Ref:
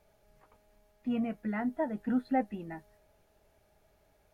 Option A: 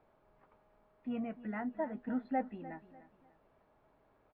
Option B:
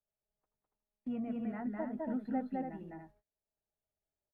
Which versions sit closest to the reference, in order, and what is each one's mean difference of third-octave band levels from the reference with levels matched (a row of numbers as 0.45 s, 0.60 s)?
A, B; 3.0 dB, 5.5 dB